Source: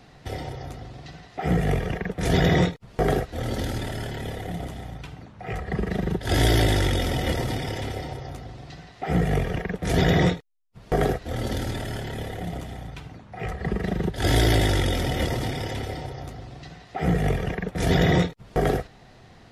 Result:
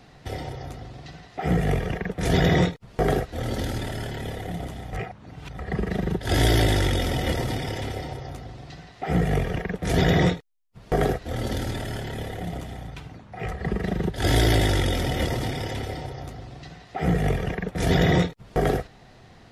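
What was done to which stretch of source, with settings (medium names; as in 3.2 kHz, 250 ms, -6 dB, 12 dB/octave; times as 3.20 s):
4.93–5.59 s: reverse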